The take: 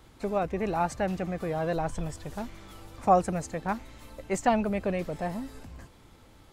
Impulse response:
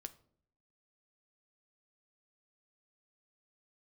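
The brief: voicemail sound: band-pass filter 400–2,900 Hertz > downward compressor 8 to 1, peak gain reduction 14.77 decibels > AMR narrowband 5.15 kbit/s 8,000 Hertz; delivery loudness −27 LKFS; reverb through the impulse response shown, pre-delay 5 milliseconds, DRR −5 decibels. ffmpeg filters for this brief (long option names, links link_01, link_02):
-filter_complex "[0:a]asplit=2[link_01][link_02];[1:a]atrim=start_sample=2205,adelay=5[link_03];[link_02][link_03]afir=irnorm=-1:irlink=0,volume=10dB[link_04];[link_01][link_04]amix=inputs=2:normalize=0,highpass=400,lowpass=2900,acompressor=threshold=-25dB:ratio=8,volume=6.5dB" -ar 8000 -c:a libopencore_amrnb -b:a 5150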